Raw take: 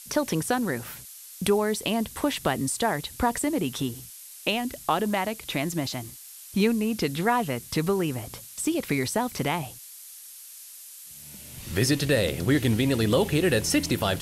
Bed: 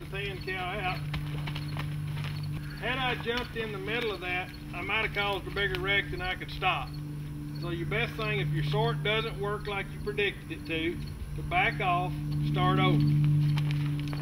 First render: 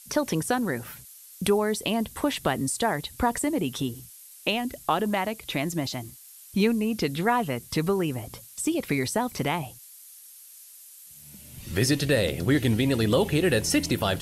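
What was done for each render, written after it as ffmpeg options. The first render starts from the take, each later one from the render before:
-af "afftdn=nr=6:nf=-45"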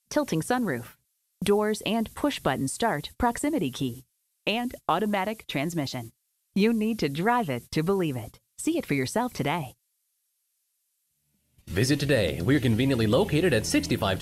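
-af "agate=range=0.0708:threshold=0.0126:ratio=16:detection=peak,highshelf=f=5900:g=-6"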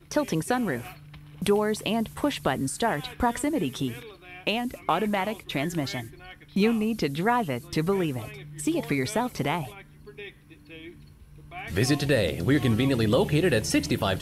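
-filter_complex "[1:a]volume=0.237[s0];[0:a][s0]amix=inputs=2:normalize=0"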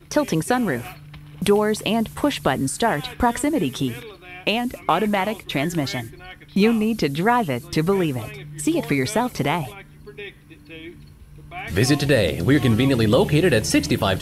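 -af "volume=1.88"

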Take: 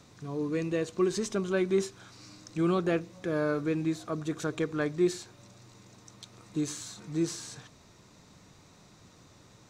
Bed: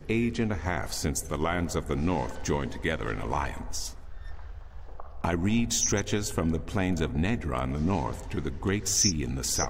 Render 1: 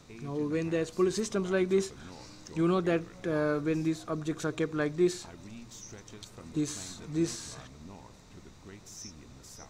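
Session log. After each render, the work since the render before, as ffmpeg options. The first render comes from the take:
-filter_complex "[1:a]volume=0.0841[s0];[0:a][s0]amix=inputs=2:normalize=0"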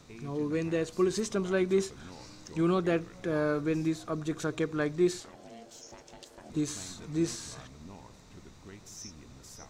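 -filter_complex "[0:a]asettb=1/sr,asplit=3[s0][s1][s2];[s0]atrim=end=5.204[s3];[s1]atrim=start=5.2:end=6.5,asetpts=PTS-STARTPTS,afade=t=in:d=0.004:c=qsin,afade=t=out:st=1.296:d=0.004:c=qsin,aeval=exprs='val(0)*sin(2*PI*460*n/s)':c=same[s4];[s2]atrim=start=6.496[s5];[s3][s4]acrossfade=d=0.004:c1=hsin:c2=qsin[s6];[s6][s5]acrossfade=d=0.004:c1=qsin:c2=hsin"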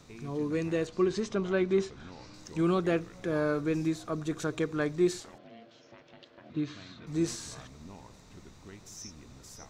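-filter_complex "[0:a]asettb=1/sr,asplit=3[s0][s1][s2];[s0]atrim=end=0.874[s3];[s1]atrim=start=0.87:end=2.34,asetpts=PTS-STARTPTS,afade=t=in:d=0.004:c=qsin,afade=t=out:st=1.466:d=0.004:c=qsin,lowpass=4500[s4];[s2]atrim=start=2.336[s5];[s3][s4]acrossfade=d=0.004:c1=hsin:c2=qsin[s6];[s6][s5]acrossfade=d=0.004:c1=qsin:c2=hsin,asettb=1/sr,asplit=3[s7][s8][s9];[s7]atrim=end=5.384[s10];[s8]atrim=start=5.38:end=7.07,asetpts=PTS-STARTPTS,afade=t=in:d=0.004:c=qsin,afade=t=out:st=1.686:d=0.004:c=qsin,highpass=120,equalizer=f=120:t=q:w=4:g=3,equalizer=f=200:t=q:w=4:g=-3,equalizer=f=420:t=q:w=4:g=-7,equalizer=f=840:t=q:w=4:g=-9,lowpass=f=3700:w=0.5412,lowpass=f=3700:w=1.3066[s11];[s9]atrim=start=7.066[s12];[s10][s11]acrossfade=d=0.004:c1=hsin:c2=qsin[s13];[s13][s12]acrossfade=d=0.004:c1=qsin:c2=hsin"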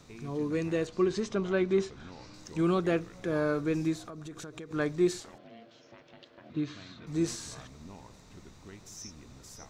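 -filter_complex "[0:a]asettb=1/sr,asplit=3[s0][s1][s2];[s0]atrim=end=4.024[s3];[s1]atrim=start=4.02:end=4.71,asetpts=PTS-STARTPTS,afade=t=in:d=0.004:c=qsin,afade=t=out:st=0.686:d=0.004:c=qsin,acompressor=threshold=0.0112:ratio=12:attack=3.2:release=140:knee=1:detection=peak[s4];[s2]atrim=start=4.706[s5];[s3][s4]acrossfade=d=0.004:c1=hsin:c2=qsin[s6];[s6][s5]acrossfade=d=0.004:c1=qsin:c2=hsin"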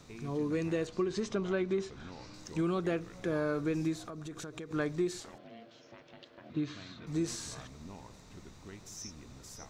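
-af "acompressor=threshold=0.0398:ratio=6"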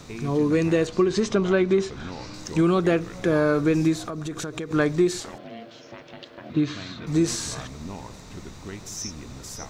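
-af "volume=3.76"

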